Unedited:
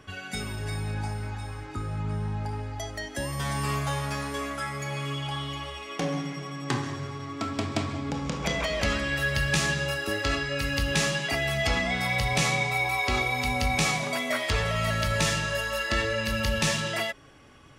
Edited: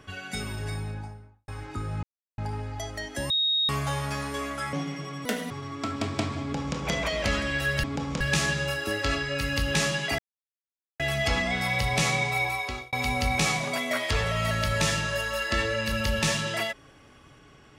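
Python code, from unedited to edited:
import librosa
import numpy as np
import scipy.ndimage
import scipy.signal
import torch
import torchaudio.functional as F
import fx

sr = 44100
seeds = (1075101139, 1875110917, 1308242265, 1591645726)

y = fx.studio_fade_out(x, sr, start_s=0.58, length_s=0.9)
y = fx.edit(y, sr, fx.silence(start_s=2.03, length_s=0.35),
    fx.bleep(start_s=3.3, length_s=0.39, hz=3750.0, db=-21.5),
    fx.cut(start_s=4.73, length_s=1.38),
    fx.speed_span(start_s=6.63, length_s=0.45, speed=1.76),
    fx.duplicate(start_s=7.98, length_s=0.37, to_s=9.41),
    fx.insert_silence(at_s=11.39, length_s=0.81),
    fx.fade_out_span(start_s=12.82, length_s=0.5), tone=tone)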